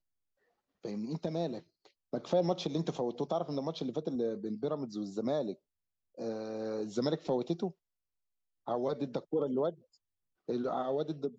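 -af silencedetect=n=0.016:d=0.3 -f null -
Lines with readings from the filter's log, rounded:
silence_start: 0.00
silence_end: 0.85 | silence_duration: 0.85
silence_start: 1.58
silence_end: 2.13 | silence_duration: 0.56
silence_start: 5.52
silence_end: 6.19 | silence_duration: 0.67
silence_start: 7.68
silence_end: 8.68 | silence_duration: 1.00
silence_start: 9.70
silence_end: 10.49 | silence_duration: 0.79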